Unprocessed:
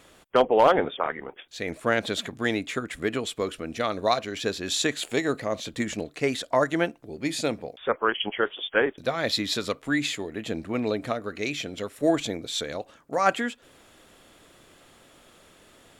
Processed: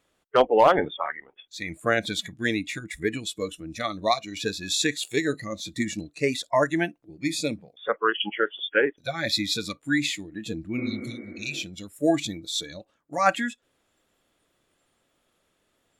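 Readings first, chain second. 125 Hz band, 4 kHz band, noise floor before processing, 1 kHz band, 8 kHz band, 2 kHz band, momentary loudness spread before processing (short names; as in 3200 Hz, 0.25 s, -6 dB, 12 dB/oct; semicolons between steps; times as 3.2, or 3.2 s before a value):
+1.0 dB, +1.0 dB, -56 dBFS, +0.5 dB, +1.5 dB, +1.0 dB, 8 LU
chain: spectral noise reduction 18 dB; spectral repair 10.8–11.6, 220–2300 Hz both; gain +1.5 dB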